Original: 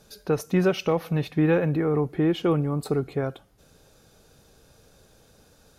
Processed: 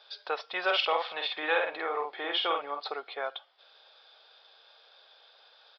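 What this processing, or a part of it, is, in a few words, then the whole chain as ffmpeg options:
musical greeting card: -filter_complex "[0:a]aresample=11025,aresample=44100,highpass=f=680:w=0.5412,highpass=f=680:w=1.3066,equalizer=f=3.4k:t=o:w=0.21:g=12,asplit=3[a][b][c];[a]afade=t=out:st=0.66:d=0.02[d];[b]asplit=2[e][f];[f]adelay=49,volume=-4dB[g];[e][g]amix=inputs=2:normalize=0,afade=t=in:st=0.66:d=0.02,afade=t=out:st=2.79:d=0.02[h];[c]afade=t=in:st=2.79:d=0.02[i];[d][h][i]amix=inputs=3:normalize=0,volume=2.5dB"

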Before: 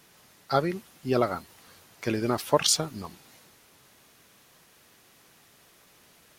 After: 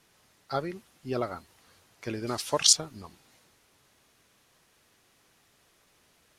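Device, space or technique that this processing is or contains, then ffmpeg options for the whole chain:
low shelf boost with a cut just above: -filter_complex "[0:a]lowpass=12k,asettb=1/sr,asplit=3[a][b][c];[a]atrim=end=2.274[d];[b]atrim=start=2.27:end=2.73,asetpts=PTS-STARTPTS,afade=t=in:d=0.004:c=qsin,afade=t=out:st=0.456:d=0.004:c=qsin,equalizer=f=6.3k:t=o:w=2.2:g=12[e];[c]atrim=start=2.726[f];[d][e]acrossfade=d=0.004:c1=hsin:c2=qsin[g];[g][f]acrossfade=d=0.004:c1=qsin:c2=hsin,lowshelf=f=89:g=6,equalizer=f=170:t=o:w=0.77:g=-3,volume=-6.5dB"

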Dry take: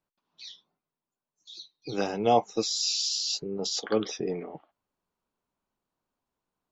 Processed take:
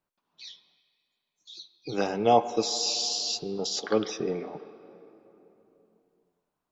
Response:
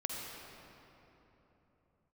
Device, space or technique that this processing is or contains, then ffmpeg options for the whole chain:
filtered reverb send: -filter_complex "[0:a]asplit=2[a][b];[b]highpass=f=510:p=1,lowpass=3k[c];[1:a]atrim=start_sample=2205[d];[c][d]afir=irnorm=-1:irlink=0,volume=-9.5dB[e];[a][e]amix=inputs=2:normalize=0"

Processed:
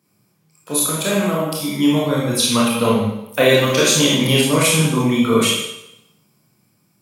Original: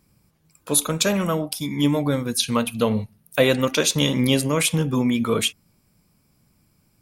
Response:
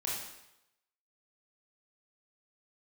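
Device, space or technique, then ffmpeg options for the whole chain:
far laptop microphone: -filter_complex "[0:a]asettb=1/sr,asplit=3[a][b][c];[a]atrim=end=0.974[d];[b]atrim=start=0.97:end=1.5,asetpts=PTS-STARTPTS,afade=t=in:d=0.004:c=qsin,afade=t=out:st=0.526:d=0.004:c=qsin,equalizer=f=5.5k:t=o:w=0.59:g=-13.5[e];[c]atrim=start=1.496[f];[d][e]acrossfade=d=0.004:c1=hsin:c2=qsin[g];[g][f]acrossfade=d=0.004:c1=qsin:c2=hsin[h];[1:a]atrim=start_sample=2205[i];[h][i]afir=irnorm=-1:irlink=0,highpass=f=120:w=0.5412,highpass=f=120:w=1.3066,dynaudnorm=f=400:g=7:m=11.5dB,volume=-1dB"

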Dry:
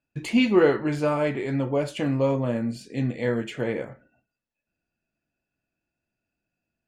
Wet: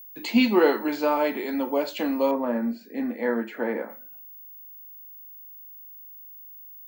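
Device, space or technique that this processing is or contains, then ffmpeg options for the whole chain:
old television with a line whistle: -filter_complex "[0:a]highpass=f=220:w=0.5412,highpass=f=220:w=1.3066,equalizer=f=220:t=q:w=4:g=6,equalizer=f=390:t=q:w=4:g=-3,equalizer=f=890:t=q:w=4:g=7,equalizer=f=4.2k:t=q:w=4:g=8,lowpass=f=7.3k:w=0.5412,lowpass=f=7.3k:w=1.3066,aeval=exprs='val(0)+0.00794*sin(2*PI*15625*n/s)':c=same,highpass=f=210:w=0.5412,highpass=f=210:w=1.3066,asettb=1/sr,asplit=3[a][b][c];[a]atrim=end=2.314[d];[b]atrim=start=2.31:end=3.9,asetpts=PTS-STARTPTS,afade=t=in:d=0.004:c=qsin,afade=t=out:st=1.586:d=0.004:c=qsin,highshelf=f=2.4k:t=q:w=1.5:g=-11.5[e];[c]atrim=start=3.896[f];[d][e]acrossfade=d=0.004:c1=hsin:c2=qsin[g];[g][f]acrossfade=d=0.004:c1=qsin:c2=hsin"

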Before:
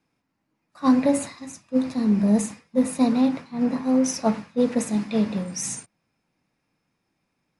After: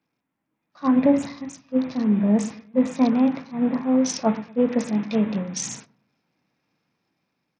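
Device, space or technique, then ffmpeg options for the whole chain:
Bluetooth headset: -filter_complex "[0:a]asettb=1/sr,asplit=3[a][b][c];[a]atrim=end=0.964[d];[b]atrim=start=0.96:end=1.49,asetpts=PTS-STARTPTS,afade=t=in:d=0.004:c=qsin,afade=t=out:st=0.526:d=0.004:c=qsin,lowshelf=f=460:g=6.5[e];[c]atrim=start=1.486[f];[d][e]acrossfade=d=0.004:c1=hsin:c2=qsin[g];[g][f]acrossfade=d=0.004:c1=qsin:c2=hsin,highpass=110,asplit=2[h][i];[i]adelay=117,lowpass=f=860:p=1,volume=-18.5dB,asplit=2[j][k];[k]adelay=117,lowpass=f=860:p=1,volume=0.39,asplit=2[l][m];[m]adelay=117,lowpass=f=860:p=1,volume=0.39[n];[h][j][l][n]amix=inputs=4:normalize=0,dynaudnorm=f=260:g=7:m=5dB,aresample=16000,aresample=44100,volume=-3.5dB" -ar 48000 -c:a sbc -b:a 64k

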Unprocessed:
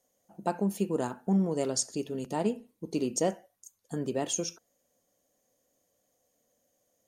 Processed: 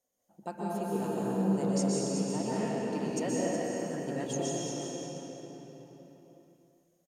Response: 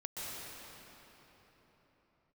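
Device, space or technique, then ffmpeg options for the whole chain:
cave: -filter_complex "[0:a]aecho=1:1:369:0.398[a];[1:a]atrim=start_sample=2205[b];[a][b]afir=irnorm=-1:irlink=0,asettb=1/sr,asplit=3[c][d][e];[c]atrim=end=2.514[f];[d]atrim=start=2.51:end=4.26,asetpts=PTS-STARTPTS,afade=t=in:d=0.004:c=qsin,afade=t=out:st=1.746:d=0.004:c=qsin,equalizer=f=1.8k:w=1.8:g=8[g];[e]atrim=start=4.256[h];[f][g]acrossfade=d=0.004:c1=hsin:c2=qsin[i];[i][h]acrossfade=d=0.004:c1=qsin:c2=hsin,volume=-3.5dB"

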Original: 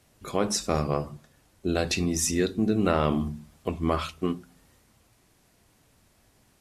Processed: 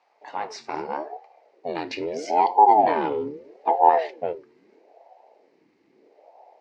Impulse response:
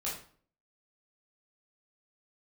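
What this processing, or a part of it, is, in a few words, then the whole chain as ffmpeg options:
voice changer toy: -filter_complex "[0:a]asettb=1/sr,asplit=3[a][b][c];[a]atrim=end=2.714[d];[b]atrim=start=2.71:end=3.71,asetpts=PTS-STARTPTS,afade=t=in:d=0.004:c=qsin,afade=t=out:st=0.996:d=0.004:c=qsin,aecho=1:1:3.4:0.71,atrim=end_sample=44100[e];[c]atrim=start=3.706[f];[d][e]acrossfade=d=0.004:c1=hsin:c2=qsin[g];[g][f]acrossfade=d=0.004:c1=qsin:c2=hsin,asubboost=boost=11:cutoff=210,aeval=exprs='val(0)*sin(2*PI*410*n/s+410*0.55/0.78*sin(2*PI*0.78*n/s))':c=same,highpass=530,equalizer=f=540:t=q:w=4:g=-5,equalizer=f=870:t=q:w=4:g=9,equalizer=f=1.4k:t=q:w=4:g=-4,equalizer=f=2.1k:t=q:w=4:g=6,equalizer=f=3.4k:t=q:w=4:g=-9,lowpass=f=4.5k:w=0.5412,lowpass=f=4.5k:w=1.3066"

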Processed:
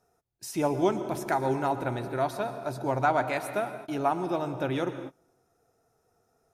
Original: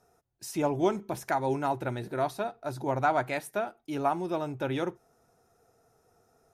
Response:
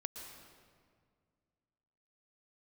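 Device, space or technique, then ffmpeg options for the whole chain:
keyed gated reverb: -filter_complex "[0:a]asplit=3[a][b][c];[1:a]atrim=start_sample=2205[d];[b][d]afir=irnorm=-1:irlink=0[e];[c]apad=whole_len=288324[f];[e][f]sidechaingate=range=-28dB:threshold=-54dB:ratio=16:detection=peak,volume=2.5dB[g];[a][g]amix=inputs=2:normalize=0,volume=-4.5dB"

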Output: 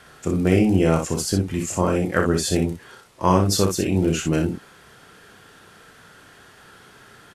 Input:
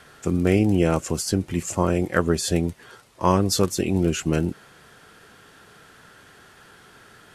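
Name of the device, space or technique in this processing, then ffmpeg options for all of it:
slapback doubling: -filter_complex "[0:a]asplit=3[a][b][c];[b]adelay=32,volume=-7dB[d];[c]adelay=61,volume=-6dB[e];[a][d][e]amix=inputs=3:normalize=0"

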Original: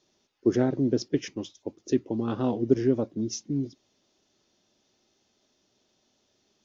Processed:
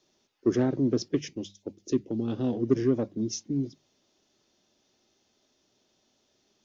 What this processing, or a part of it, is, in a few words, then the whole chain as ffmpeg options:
one-band saturation: -filter_complex "[0:a]bandreject=f=50:t=h:w=6,bandreject=f=100:t=h:w=6,bandreject=f=150:t=h:w=6,bandreject=f=200:t=h:w=6,asplit=3[a][b][c];[a]afade=t=out:st=1.19:d=0.02[d];[b]equalizer=f=1.1k:t=o:w=1.2:g=-12.5,afade=t=in:st=1.19:d=0.02,afade=t=out:st=2.54:d=0.02[e];[c]afade=t=in:st=2.54:d=0.02[f];[d][e][f]amix=inputs=3:normalize=0,acrossover=split=380|3700[g][h][i];[h]asoftclip=type=tanh:threshold=-27dB[j];[g][j][i]amix=inputs=3:normalize=0"

